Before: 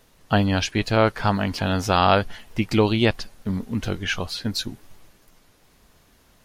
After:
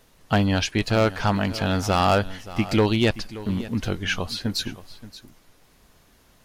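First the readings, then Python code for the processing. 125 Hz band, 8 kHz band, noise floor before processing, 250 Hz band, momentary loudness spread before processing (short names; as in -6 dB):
0.0 dB, +0.5 dB, -58 dBFS, 0.0 dB, 10 LU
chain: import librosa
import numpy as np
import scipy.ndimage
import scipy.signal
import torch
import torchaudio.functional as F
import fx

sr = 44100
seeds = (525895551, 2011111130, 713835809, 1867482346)

p1 = np.clip(x, -10.0 ** (-12.5 / 20.0), 10.0 ** (-12.5 / 20.0))
y = p1 + fx.echo_single(p1, sr, ms=576, db=-16.5, dry=0)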